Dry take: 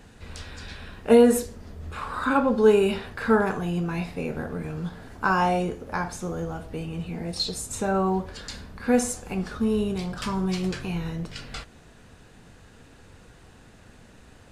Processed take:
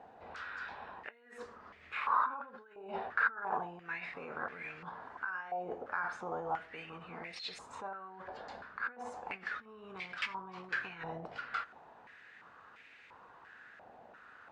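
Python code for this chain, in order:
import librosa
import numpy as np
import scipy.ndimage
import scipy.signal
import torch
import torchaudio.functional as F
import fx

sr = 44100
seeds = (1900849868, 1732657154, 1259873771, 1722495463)

y = fx.over_compress(x, sr, threshold_db=-31.0, ratio=-1.0)
y = fx.air_absorb(y, sr, metres=60.0)
y = fx.filter_held_bandpass(y, sr, hz=2.9, low_hz=750.0, high_hz=2200.0)
y = y * 10.0 ** (3.5 / 20.0)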